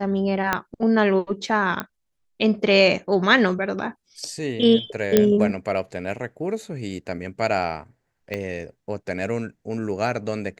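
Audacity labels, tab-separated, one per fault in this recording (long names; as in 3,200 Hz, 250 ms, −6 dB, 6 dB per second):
0.530000	0.530000	click −6 dBFS
1.800000	1.800000	click −12 dBFS
5.170000	5.170000	click −2 dBFS
8.340000	8.340000	click −15 dBFS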